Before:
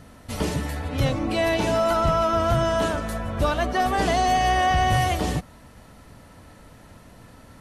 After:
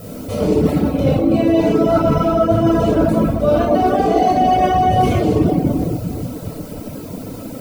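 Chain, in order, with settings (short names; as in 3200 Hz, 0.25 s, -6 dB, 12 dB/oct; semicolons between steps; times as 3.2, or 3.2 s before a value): notches 60/120 Hz; added noise blue -45 dBFS; notch 1800 Hz, Q 6.2; reverb RT60 1.8 s, pre-delay 19 ms, DRR -6 dB; reverb removal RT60 0.64 s; small resonant body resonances 280/450 Hz, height 16 dB, ringing for 20 ms; reverse; compressor, threshold -10 dBFS, peak gain reduction 12.5 dB; reverse; gain -1.5 dB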